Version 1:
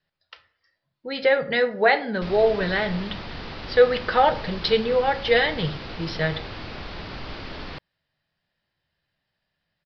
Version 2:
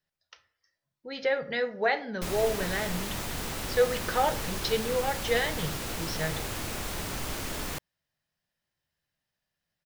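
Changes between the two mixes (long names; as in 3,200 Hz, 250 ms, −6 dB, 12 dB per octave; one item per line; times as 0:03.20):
speech −8.0 dB
master: remove Butterworth low-pass 5,000 Hz 72 dB per octave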